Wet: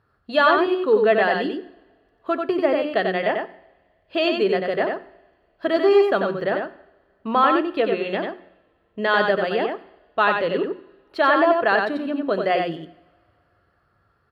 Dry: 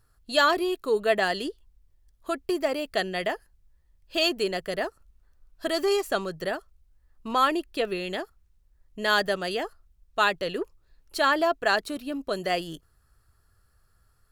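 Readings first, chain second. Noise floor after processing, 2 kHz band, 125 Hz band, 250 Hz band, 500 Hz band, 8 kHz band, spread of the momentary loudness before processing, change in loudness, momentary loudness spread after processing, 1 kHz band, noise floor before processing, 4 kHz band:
-65 dBFS, +4.5 dB, +5.5 dB, +7.5 dB, +8.0 dB, under -15 dB, 13 LU, +6.0 dB, 14 LU, +6.0 dB, -65 dBFS, -1.0 dB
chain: HPF 140 Hz 12 dB/oct; notches 60/120/180/240/300/360 Hz; in parallel at -2 dB: limiter -16.5 dBFS, peak gain reduction 8 dB; on the sum: air absorption 400 m; on a send: echo 92 ms -4.5 dB; on the sum: two-slope reverb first 0.9 s, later 3.4 s, from -24 dB, DRR 15 dB; gain +3 dB

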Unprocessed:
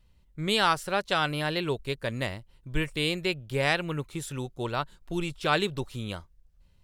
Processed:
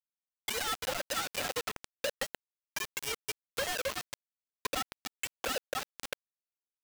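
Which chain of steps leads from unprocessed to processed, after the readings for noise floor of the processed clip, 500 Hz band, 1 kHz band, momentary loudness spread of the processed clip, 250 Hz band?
under -85 dBFS, -8.5 dB, -9.0 dB, 9 LU, -17.5 dB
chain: sine-wave speech; on a send: feedback echo 0.263 s, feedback 50%, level -12 dB; on the sum: limiter -22 dBFS, peak gain reduction 8 dB; steep high-pass 440 Hz 96 dB/oct; in parallel at -8.5 dB: sine folder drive 12 dB, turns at -19.5 dBFS; on the sum: comb 3.8 ms, depth 31%; bit-crush 4-bit; compressor, threshold -25 dBFS, peak gain reduction 6.5 dB; gain -4.5 dB

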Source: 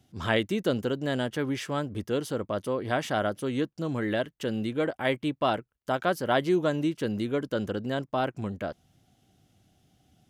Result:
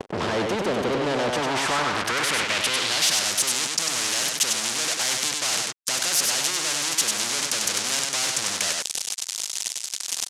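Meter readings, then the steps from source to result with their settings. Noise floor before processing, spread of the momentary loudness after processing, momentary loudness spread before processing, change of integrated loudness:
-69 dBFS, 7 LU, 6 LU, +6.5 dB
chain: reverse; compressor 10:1, threshold -33 dBFS, peak gain reduction 14 dB; reverse; high shelf 6900 Hz +11.5 dB; fuzz box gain 63 dB, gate -57 dBFS; LPF 9300 Hz 12 dB/oct; on a send: echo 97 ms -5.5 dB; on the sum: band-pass sweep 450 Hz -> 6400 Hz, 1.07–3.32; spectral compressor 2:1; gain +2 dB

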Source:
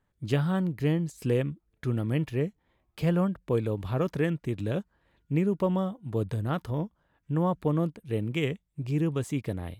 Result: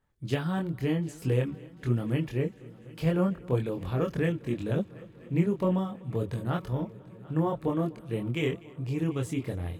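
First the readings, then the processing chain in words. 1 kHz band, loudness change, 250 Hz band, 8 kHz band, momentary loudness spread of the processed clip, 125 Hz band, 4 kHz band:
-1.0 dB, -1.0 dB, -1.0 dB, n/a, 7 LU, -1.0 dB, -0.5 dB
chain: chorus voices 4, 0.81 Hz, delay 24 ms, depth 1.9 ms; multi-head echo 0.247 s, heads first and third, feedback 69%, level -23 dB; gain +2.5 dB

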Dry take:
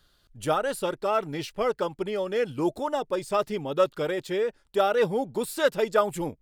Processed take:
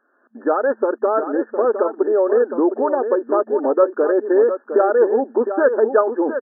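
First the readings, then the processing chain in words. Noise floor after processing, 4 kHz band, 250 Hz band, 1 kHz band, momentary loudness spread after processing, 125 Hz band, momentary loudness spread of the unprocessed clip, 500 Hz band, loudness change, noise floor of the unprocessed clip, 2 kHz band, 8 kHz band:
-60 dBFS, under -40 dB, +10.0 dB, +6.0 dB, 4 LU, under -15 dB, 6 LU, +10.0 dB, +9.0 dB, -65 dBFS, +4.5 dB, under -40 dB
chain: recorder AGC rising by 40 dB/s; FFT band-pass 220–1800 Hz; dynamic EQ 420 Hz, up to +5 dB, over -36 dBFS, Q 1.4; echo 0.71 s -9 dB; gain +4 dB

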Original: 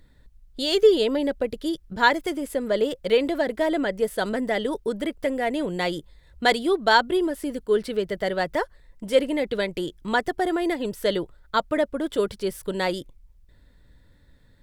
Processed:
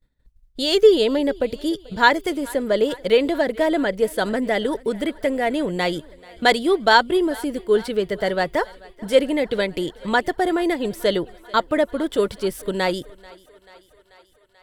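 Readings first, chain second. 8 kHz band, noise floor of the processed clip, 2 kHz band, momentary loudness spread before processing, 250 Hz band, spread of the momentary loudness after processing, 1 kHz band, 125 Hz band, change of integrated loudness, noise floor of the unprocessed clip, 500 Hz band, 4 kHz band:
+3.5 dB, -58 dBFS, +3.5 dB, 10 LU, +3.5 dB, 10 LU, +3.5 dB, +3.5 dB, +3.5 dB, -56 dBFS, +3.5 dB, +3.5 dB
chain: expander -42 dBFS; on a send: thinning echo 0.437 s, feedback 70%, high-pass 310 Hz, level -22.5 dB; on the sum: gain +3.5 dB

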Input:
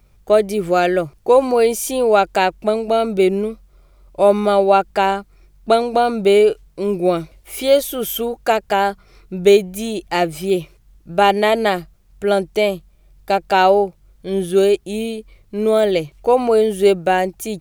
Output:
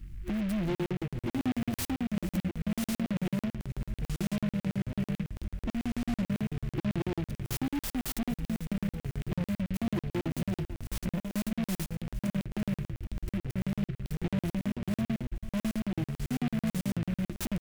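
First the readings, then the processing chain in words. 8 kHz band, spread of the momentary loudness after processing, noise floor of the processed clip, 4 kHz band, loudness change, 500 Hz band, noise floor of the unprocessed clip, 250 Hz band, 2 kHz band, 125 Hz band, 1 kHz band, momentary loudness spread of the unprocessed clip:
-13.0 dB, 5 LU, under -85 dBFS, -17.5 dB, -16.5 dB, -28.0 dB, -53 dBFS, -7.5 dB, -19.0 dB, -1.0 dB, -28.0 dB, 11 LU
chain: recorder AGC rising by 9.5 dB/s; FFT band-reject 360–5300 Hz; low shelf 450 Hz +10.5 dB; compressor 2:1, threshold -30 dBFS, peak gain reduction 11.5 dB; vibrato 5.7 Hz 7 cents; soft clip -28 dBFS, distortion -11 dB; echoes that change speed 0.285 s, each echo -6 st, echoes 3, each echo -6 dB; feedback echo 0.475 s, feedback 35%, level -15.5 dB; crackling interface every 0.11 s, samples 2048, zero, from 0.75; noise-modulated delay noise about 1900 Hz, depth 0.08 ms

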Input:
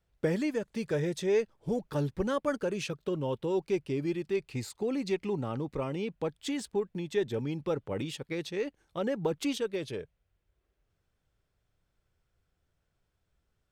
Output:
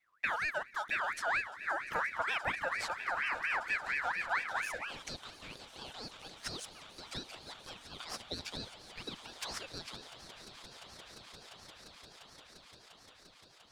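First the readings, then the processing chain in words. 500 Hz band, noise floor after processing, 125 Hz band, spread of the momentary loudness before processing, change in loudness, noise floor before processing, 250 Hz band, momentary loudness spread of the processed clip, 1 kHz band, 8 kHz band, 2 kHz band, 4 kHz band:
-16.0 dB, -60 dBFS, -18.0 dB, 6 LU, -4.0 dB, -79 dBFS, -21.0 dB, 19 LU, +4.5 dB, -1.5 dB, +9.0 dB, +1.5 dB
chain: compressor 2:1, threshold -31 dBFS, peak gain reduction 5 dB; on a send: swelling echo 0.174 s, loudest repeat 8, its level -17 dB; on the sum: high-pass sweep 63 Hz -> 1800 Hz, 4.11–5.09; ring modulator with a swept carrier 1600 Hz, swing 35%, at 4.3 Hz

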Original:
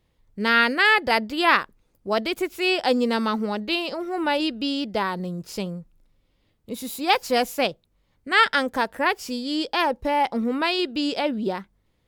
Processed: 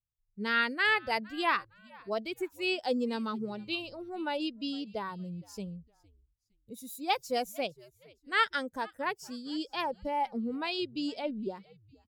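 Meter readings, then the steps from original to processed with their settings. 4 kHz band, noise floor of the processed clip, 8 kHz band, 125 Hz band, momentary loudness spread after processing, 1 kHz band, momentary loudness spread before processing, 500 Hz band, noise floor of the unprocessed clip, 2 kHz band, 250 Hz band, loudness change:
-10.5 dB, -75 dBFS, -10.5 dB, -9.0 dB, 13 LU, -10.0 dB, 13 LU, -10.0 dB, -68 dBFS, -10.0 dB, -10.0 dB, -10.0 dB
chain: per-bin expansion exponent 1.5; frequency-shifting echo 0.46 s, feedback 32%, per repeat -110 Hz, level -24 dB; gain -7.5 dB

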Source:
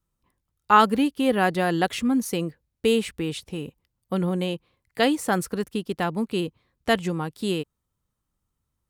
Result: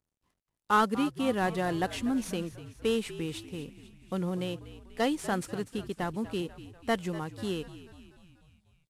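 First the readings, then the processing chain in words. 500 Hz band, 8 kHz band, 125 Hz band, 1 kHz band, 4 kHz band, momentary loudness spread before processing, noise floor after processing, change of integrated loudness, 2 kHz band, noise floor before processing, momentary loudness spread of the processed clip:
-7.0 dB, -7.0 dB, -6.0 dB, -8.0 dB, -8.0 dB, 13 LU, under -85 dBFS, -7.5 dB, -7.5 dB, -80 dBFS, 13 LU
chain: CVSD 64 kbps; on a send: frequency-shifting echo 0.244 s, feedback 59%, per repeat -62 Hz, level -15 dB; on the sum: gain -7 dB

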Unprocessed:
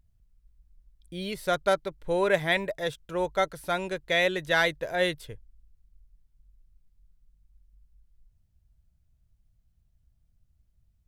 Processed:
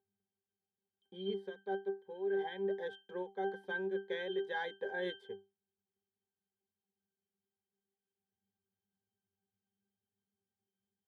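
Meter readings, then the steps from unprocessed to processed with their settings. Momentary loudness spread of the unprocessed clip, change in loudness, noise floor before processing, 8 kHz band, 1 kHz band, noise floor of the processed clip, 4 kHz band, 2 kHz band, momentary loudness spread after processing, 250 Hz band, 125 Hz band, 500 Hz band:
10 LU, -12.0 dB, -69 dBFS, under -30 dB, -13.5 dB, under -85 dBFS, -16.0 dB, -14.5 dB, 7 LU, -9.0 dB, -17.0 dB, -10.0 dB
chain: in parallel at -3 dB: crossover distortion -47 dBFS; on the sum: ladder high-pass 260 Hz, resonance 25%; limiter -17.5 dBFS, peak gain reduction 8 dB; octave resonator G, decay 0.23 s; reverse; compressor 10:1, threshold -50 dBFS, peak gain reduction 21 dB; reverse; ending taper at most 230 dB/s; gain +16.5 dB

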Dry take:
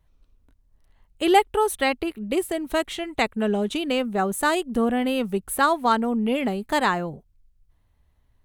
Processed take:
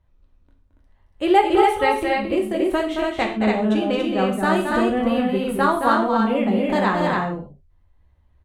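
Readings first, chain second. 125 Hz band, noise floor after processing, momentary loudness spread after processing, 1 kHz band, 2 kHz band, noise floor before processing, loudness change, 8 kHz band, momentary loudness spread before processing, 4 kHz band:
+6.5 dB, -59 dBFS, 6 LU, +3.5 dB, +2.0 dB, -64 dBFS, +3.5 dB, -8.0 dB, 7 LU, -1.0 dB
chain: LPF 2100 Hz 6 dB/oct; on a send: loudspeakers at several distances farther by 76 m -6 dB, 97 m -3 dB; on the sum: non-linear reverb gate 0.16 s falling, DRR 2 dB

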